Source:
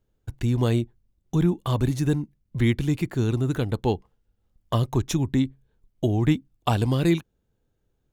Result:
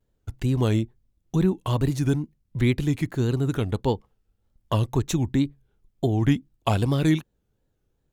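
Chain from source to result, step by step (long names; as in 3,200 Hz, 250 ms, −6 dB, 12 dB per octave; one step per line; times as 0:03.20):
tape wow and flutter 130 cents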